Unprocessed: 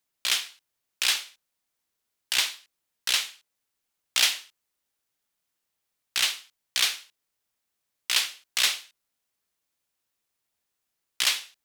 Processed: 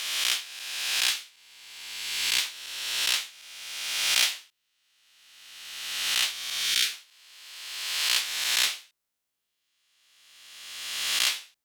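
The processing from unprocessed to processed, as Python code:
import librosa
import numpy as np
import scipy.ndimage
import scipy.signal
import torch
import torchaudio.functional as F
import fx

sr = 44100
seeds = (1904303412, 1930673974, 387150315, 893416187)

y = fx.spec_swells(x, sr, rise_s=1.73)
y = fx.dynamic_eq(y, sr, hz=740.0, q=1.0, threshold_db=-44.0, ratio=4.0, max_db=-5, at=(1.09, 2.45))
y = fx.spec_repair(y, sr, seeds[0], start_s=6.61, length_s=0.29, low_hz=510.0, high_hz=1300.0, source='both')
y = y * librosa.db_to_amplitude(-5.0)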